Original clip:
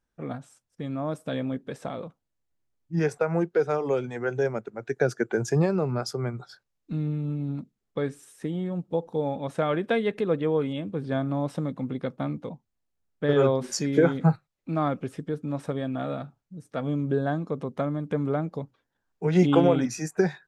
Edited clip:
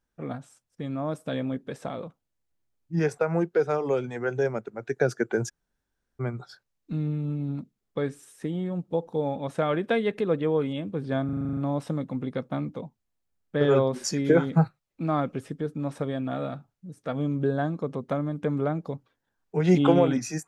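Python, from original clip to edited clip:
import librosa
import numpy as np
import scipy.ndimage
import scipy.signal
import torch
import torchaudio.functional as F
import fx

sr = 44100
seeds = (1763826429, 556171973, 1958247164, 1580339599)

y = fx.edit(x, sr, fx.room_tone_fill(start_s=5.49, length_s=0.71, crossfade_s=0.02),
    fx.stutter(start_s=11.25, slice_s=0.04, count=9), tone=tone)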